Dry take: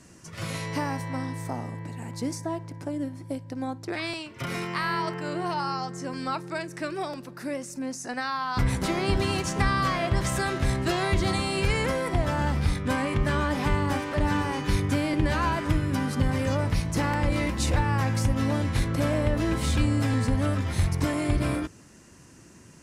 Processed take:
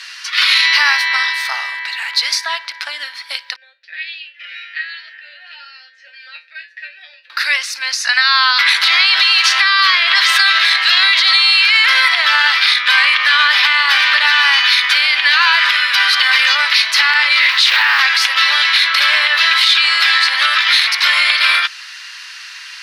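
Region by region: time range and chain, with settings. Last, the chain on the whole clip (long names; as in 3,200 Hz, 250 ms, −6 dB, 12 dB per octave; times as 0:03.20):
0:03.56–0:07.30: formant filter e + tuned comb filter 82 Hz, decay 0.23 s, harmonics odd, mix 90%
0:17.37–0:18.00: parametric band 84 Hz +12.5 dB 1.1 octaves + noise that follows the level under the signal 34 dB + highs frequency-modulated by the lows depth 0.55 ms
whole clip: high-pass filter 1,500 Hz 24 dB per octave; high shelf with overshoot 5,600 Hz −11.5 dB, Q 3; boost into a limiter +28.5 dB; level −1 dB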